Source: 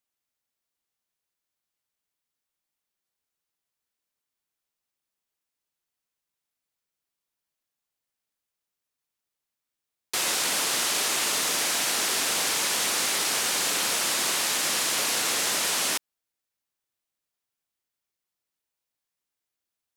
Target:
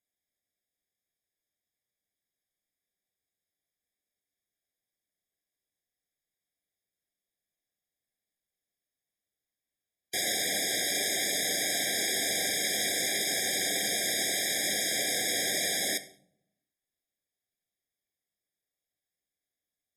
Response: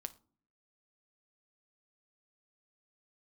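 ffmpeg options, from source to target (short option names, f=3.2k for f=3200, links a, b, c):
-filter_complex "[1:a]atrim=start_sample=2205,asetrate=26901,aresample=44100[a];[0:a][a]afir=irnorm=-1:irlink=0,afftfilt=real='re*eq(mod(floor(b*sr/1024/790),2),0)':imag='im*eq(mod(floor(b*sr/1024/790),2),0)':win_size=1024:overlap=0.75"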